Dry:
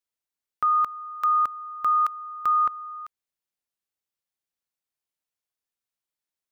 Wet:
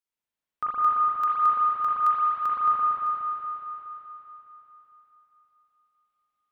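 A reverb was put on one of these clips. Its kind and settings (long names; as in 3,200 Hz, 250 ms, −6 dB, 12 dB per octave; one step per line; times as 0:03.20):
spring reverb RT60 3.8 s, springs 38/59 ms, chirp 65 ms, DRR −8.5 dB
level −5 dB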